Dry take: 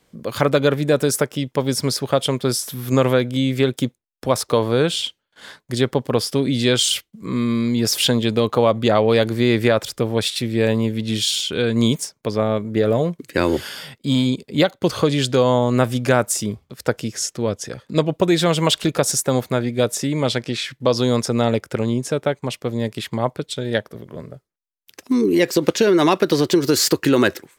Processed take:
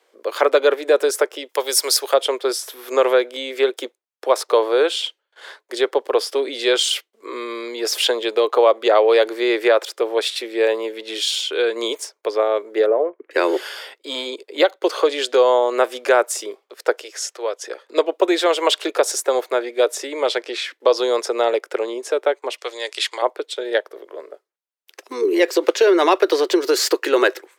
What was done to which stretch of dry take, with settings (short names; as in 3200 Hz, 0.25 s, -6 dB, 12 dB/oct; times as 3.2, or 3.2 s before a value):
1.49–2.14 RIAA curve recording
12.86–13.31 Gaussian blur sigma 4.9 samples
17.02–17.64 HPF 530 Hz
22.58–23.22 weighting filter ITU-R 468
whole clip: steep high-pass 360 Hz 48 dB/oct; high shelf 4400 Hz -8.5 dB; gain +3 dB